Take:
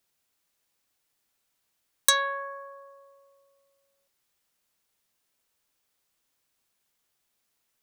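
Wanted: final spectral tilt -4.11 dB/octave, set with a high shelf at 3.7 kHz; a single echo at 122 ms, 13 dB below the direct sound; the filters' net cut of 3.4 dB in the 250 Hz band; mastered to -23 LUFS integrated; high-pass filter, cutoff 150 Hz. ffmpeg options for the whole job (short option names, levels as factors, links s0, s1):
-af "highpass=150,equalizer=f=250:t=o:g=-4,highshelf=f=3700:g=-7,aecho=1:1:122:0.224,volume=1.88"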